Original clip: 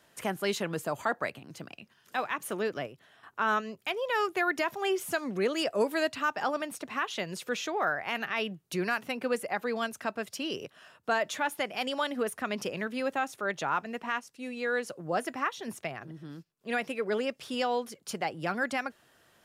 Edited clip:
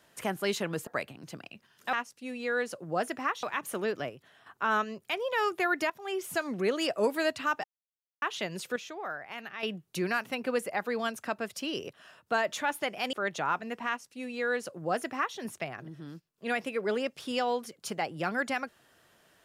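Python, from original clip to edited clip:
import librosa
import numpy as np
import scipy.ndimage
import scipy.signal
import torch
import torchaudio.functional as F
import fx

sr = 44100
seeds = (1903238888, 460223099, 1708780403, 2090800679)

y = fx.edit(x, sr, fx.cut(start_s=0.87, length_s=0.27),
    fx.fade_in_from(start_s=4.67, length_s=0.49, floor_db=-15.5),
    fx.silence(start_s=6.41, length_s=0.58),
    fx.clip_gain(start_s=7.53, length_s=0.87, db=-8.5),
    fx.cut(start_s=11.9, length_s=1.46),
    fx.duplicate(start_s=14.1, length_s=1.5, to_s=2.2), tone=tone)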